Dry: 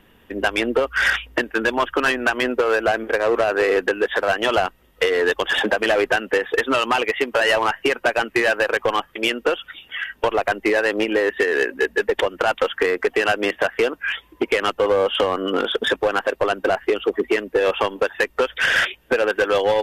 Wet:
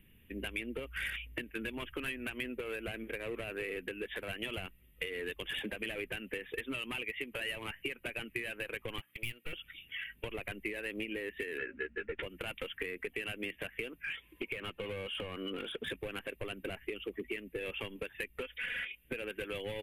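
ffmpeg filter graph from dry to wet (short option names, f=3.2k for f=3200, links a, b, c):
-filter_complex "[0:a]asettb=1/sr,asplit=3[a][b][c];[a]atrim=end=8.984[d];[b]atrim=start=8.98:end=9.53,asetpts=PTS-STARTPTS,afade=t=in:d=0.004:c=qsin,afade=t=out:st=0.546:d=0.004:c=qsin,aeval=exprs='val(0)+0.00447*(sin(2*PI*60*n/s)+sin(2*PI*2*60*n/s)/2+sin(2*PI*3*60*n/s)/3+sin(2*PI*4*60*n/s)/4+sin(2*PI*5*60*n/s)/5)':c=same,highpass=650,aeval=exprs='clip(val(0),-1,0.0224)':c=same[e];[c]atrim=start=9.526[f];[d][e]acrossfade=d=0.004:c1=hsin:c2=qsin[g];[g][f]acrossfade=d=0.004:c1=qsin:c2=hsin,asettb=1/sr,asplit=3[h][i][j];[h]atrim=end=11.584[k];[i]atrim=start=11.58:end=12.23,asetpts=PTS-STARTPTS,afade=t=in:d=0.004:c=qsin,afade=t=out:st=0.646:d=0.004:c=qsin,lowpass=2.5k,equalizer=f=1.4k:t=o:w=0.3:g=14.5,asplit=2[l][m];[m]adelay=13,volume=-4dB[n];[l][n]amix=inputs=2:normalize=0,atrim=end_sample=28665[o];[j]atrim=start=12.226[p];[k][o]acrossfade=d=0.004:c1=hsin:c2=qsin[q];[q][p]acrossfade=d=0.004:c1=qsin:c2=hsin,asettb=1/sr,asplit=3[r][s][t];[r]atrim=end=14.044[u];[s]atrim=start=14.04:end=15.88,asetpts=PTS-STARTPTS,afade=t=in:d=0.004:c=qsin,afade=t=out:st=1.836:d=0.004:c=qsin,asplit=2[v][w];[w]highpass=f=720:p=1,volume=14dB,asoftclip=type=tanh:threshold=-8dB[x];[v][x]amix=inputs=2:normalize=0,lowpass=f=5k:p=1,volume=-6dB,bandreject=f=2k:w=19,acrossover=split=1700|5100[y][z][aa];[y]acompressor=threshold=-18dB:ratio=4[ab];[z]acompressor=threshold=-32dB:ratio=4[ac];[aa]acompressor=threshold=-49dB:ratio=4[ad];[ab][ac][ad]amix=inputs=3:normalize=0[ae];[t]atrim=start=15.876[af];[u][ae]acrossfade=d=0.004:c1=hsin:c2=qsin[ag];[ag][af]acrossfade=d=0.004:c1=qsin:c2=hsin,asettb=1/sr,asplit=3[ah][ai][aj];[ah]atrim=end=18.424[ak];[ai]atrim=start=18.42:end=19.05,asetpts=PTS-STARTPTS,afade=t=in:d=0.004:c=qsin,afade=t=out:st=0.626:d=0.004:c=qsin,acrossover=split=2800[al][am];[am]acompressor=threshold=-42dB:ratio=4:attack=1:release=60[an];[al][an]amix=inputs=2:normalize=0,lowshelf=f=420:g=-8,aecho=1:1:4.1:0.64,atrim=end_sample=27783[ao];[aj]atrim=start=19.046[ap];[ak][ao]acrossfade=d=0.004:c1=hsin:c2=qsin[aq];[aq][ap]acrossfade=d=0.004:c1=qsin:c2=hsin,firequalizer=gain_entry='entry(140,0);entry(250,-7);entry(750,-23);entry(1500,-17);entry(2300,-1);entry(5400,-25);entry(9900,1)':delay=0.05:min_phase=1,acompressor=threshold=-31dB:ratio=4,volume=-4.5dB"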